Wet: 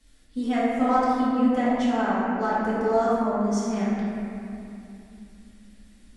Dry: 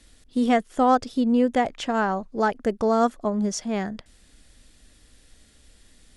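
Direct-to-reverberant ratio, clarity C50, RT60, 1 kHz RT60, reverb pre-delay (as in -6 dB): -11.0 dB, -4.0 dB, 2.8 s, 2.6 s, 4 ms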